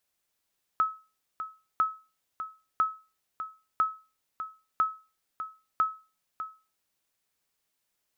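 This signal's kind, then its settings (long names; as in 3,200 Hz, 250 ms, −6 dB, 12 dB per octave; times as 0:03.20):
ping with an echo 1,290 Hz, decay 0.32 s, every 1.00 s, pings 6, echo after 0.60 s, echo −11 dB −17 dBFS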